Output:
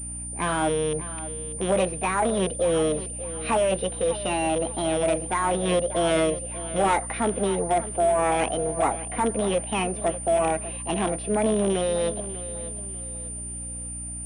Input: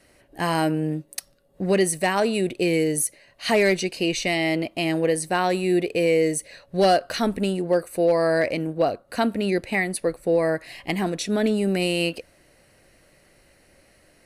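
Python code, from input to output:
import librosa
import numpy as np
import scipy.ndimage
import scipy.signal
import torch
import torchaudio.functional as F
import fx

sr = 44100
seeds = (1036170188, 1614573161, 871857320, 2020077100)

p1 = fx.rattle_buzz(x, sr, strikes_db=-26.0, level_db=-19.0)
p2 = scipy.signal.sosfilt(scipy.signal.butter(4, 150.0, 'highpass', fs=sr, output='sos'), p1)
p3 = fx.low_shelf(p2, sr, hz=280.0, db=-5.5)
p4 = fx.notch(p3, sr, hz=570.0, q=15.0)
p5 = fx.cheby_harmonics(p4, sr, harmonics=(2, 5), levels_db=(-21, -15), full_scale_db=-8.5)
p6 = fx.formant_shift(p5, sr, semitones=5)
p7 = fx.air_absorb(p6, sr, metres=460.0)
p8 = p7 + fx.echo_feedback(p7, sr, ms=594, feedback_pct=35, wet_db=-14.5, dry=0)
p9 = fx.add_hum(p8, sr, base_hz=60, snr_db=13)
p10 = fx.pwm(p9, sr, carrier_hz=9200.0)
y = F.gain(torch.from_numpy(p10), -1.5).numpy()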